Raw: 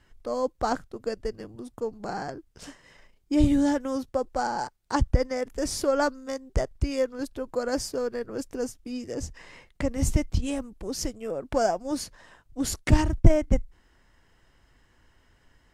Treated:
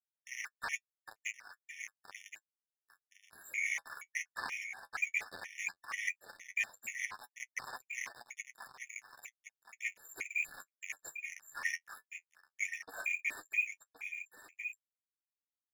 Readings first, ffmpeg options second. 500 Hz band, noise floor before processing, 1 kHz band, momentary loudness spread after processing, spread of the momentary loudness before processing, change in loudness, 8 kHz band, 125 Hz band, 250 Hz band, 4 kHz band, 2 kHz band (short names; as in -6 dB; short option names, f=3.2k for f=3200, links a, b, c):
-34.0 dB, -64 dBFS, -18.5 dB, 16 LU, 13 LU, -11.5 dB, -9.0 dB, under -40 dB, under -40 dB, -12.5 dB, +3.0 dB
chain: -filter_complex "[0:a]afftfilt=real='re*lt(hypot(re,im),1.78)':imag='im*lt(hypot(re,im),1.78)':win_size=1024:overlap=0.75,acrossover=split=280|1000[a][b][c];[a]acontrast=64[d];[d][b][c]amix=inputs=3:normalize=0,equalizer=f=380:w=1.3:g=-7,afftfilt=real='hypot(re,im)*cos(2*PI*random(0))':imag='hypot(re,im)*sin(2*PI*random(1))':win_size=512:overlap=0.75,lowpass=f=2.1k:t=q:w=0.5098,lowpass=f=2.1k:t=q:w=0.6013,lowpass=f=2.1k:t=q:w=0.9,lowpass=f=2.1k:t=q:w=2.563,afreqshift=-2500,aeval=exprs='sgn(val(0))*max(abs(val(0))-0.0211,0)':c=same,areverse,acompressor=threshold=-40dB:ratio=6,areverse,flanger=delay=7.7:depth=4.4:regen=35:speed=0.13:shape=triangular,equalizer=f=880:w=1.6:g=4.5,aecho=1:1:1070:0.355,afftfilt=real='re*gt(sin(2*PI*2.1*pts/sr)*(1-2*mod(floor(b*sr/1024/1800),2)),0)':imag='im*gt(sin(2*PI*2.1*pts/sr)*(1-2*mod(floor(b*sr/1024/1800),2)),0)':win_size=1024:overlap=0.75,volume=11.5dB"